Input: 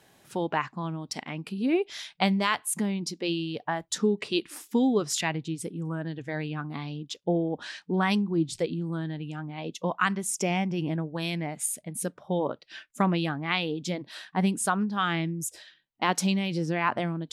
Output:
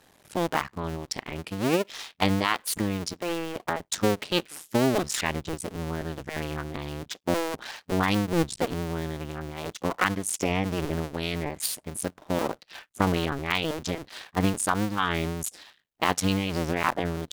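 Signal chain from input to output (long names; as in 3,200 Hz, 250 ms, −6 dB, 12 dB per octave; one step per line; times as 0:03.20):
sub-harmonics by changed cycles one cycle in 2, muted
level +3.5 dB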